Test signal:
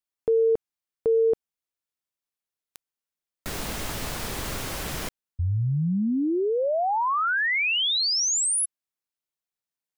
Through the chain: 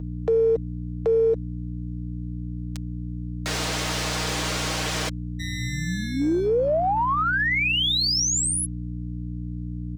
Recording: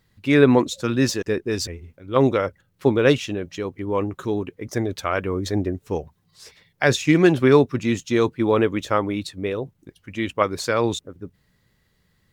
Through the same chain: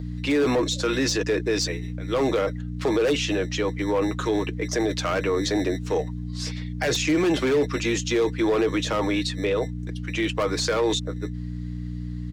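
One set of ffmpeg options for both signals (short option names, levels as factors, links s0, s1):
-filter_complex "[0:a]acrossover=split=180|2600[s0][s1][s2];[s0]acrusher=samples=23:mix=1:aa=0.000001[s3];[s3][s1][s2]amix=inputs=3:normalize=0,acrossover=split=340 7400:gain=0.0891 1 0.0891[s4][s5][s6];[s4][s5][s6]amix=inputs=3:normalize=0,aeval=exprs='val(0)+0.0158*(sin(2*PI*60*n/s)+sin(2*PI*2*60*n/s)/2+sin(2*PI*3*60*n/s)/3+sin(2*PI*4*60*n/s)/4+sin(2*PI*5*60*n/s)/5)':c=same,aeval=exprs='0.596*(cos(1*acos(clip(val(0)/0.596,-1,1)))-cos(1*PI/2))+0.00531*(cos(7*acos(clip(val(0)/0.596,-1,1)))-cos(7*PI/2))':c=same,highshelf=f=3500:g=6.5,asoftclip=type=hard:threshold=0.126,aecho=1:1:6.4:0.46,acrossover=split=470[s7][s8];[s8]acompressor=threshold=0.0224:ratio=2.5:attack=0.38:release=59:knee=2.83:detection=peak[s9];[s7][s9]amix=inputs=2:normalize=0,highpass=f=41:p=1,acompressor=threshold=0.0447:ratio=3:attack=0.73:release=29:knee=1,volume=2.66"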